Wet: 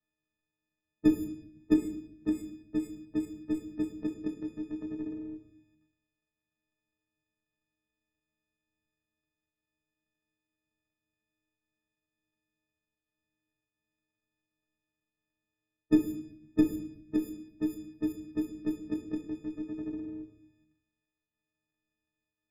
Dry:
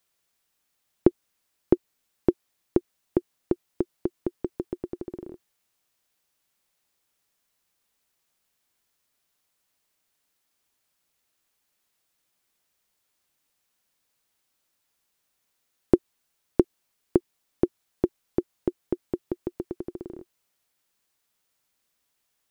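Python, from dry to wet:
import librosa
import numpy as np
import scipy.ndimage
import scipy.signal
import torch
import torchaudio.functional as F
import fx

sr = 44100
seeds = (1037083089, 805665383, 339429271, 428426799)

y = fx.freq_snap(x, sr, grid_st=6)
y = fx.env_lowpass(y, sr, base_hz=820.0, full_db=-22.0)
y = fx.band_shelf(y, sr, hz=730.0, db=-12.5, octaves=1.7)
y = fx.level_steps(y, sr, step_db=9)
y = fx.transient(y, sr, attack_db=-3, sustain_db=8)
y = fx.room_shoebox(y, sr, seeds[0], volume_m3=120.0, walls='mixed', distance_m=0.51)
y = fx.resample_linear(y, sr, factor=2, at=(1.74, 4.14))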